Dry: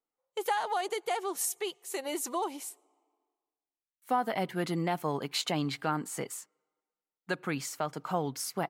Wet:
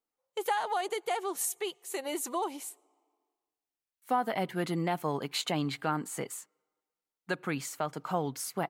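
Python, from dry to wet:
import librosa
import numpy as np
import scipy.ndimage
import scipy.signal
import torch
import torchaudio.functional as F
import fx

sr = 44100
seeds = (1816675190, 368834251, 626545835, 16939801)

y = fx.dynamic_eq(x, sr, hz=5300.0, q=3.5, threshold_db=-56.0, ratio=4.0, max_db=-5)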